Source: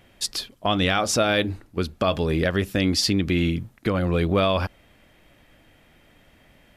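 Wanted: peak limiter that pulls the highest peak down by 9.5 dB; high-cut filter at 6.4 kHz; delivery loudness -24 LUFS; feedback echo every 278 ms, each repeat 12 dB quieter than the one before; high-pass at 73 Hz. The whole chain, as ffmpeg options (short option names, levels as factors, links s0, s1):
-af "highpass=73,lowpass=6400,alimiter=limit=0.158:level=0:latency=1,aecho=1:1:278|556|834:0.251|0.0628|0.0157,volume=1.5"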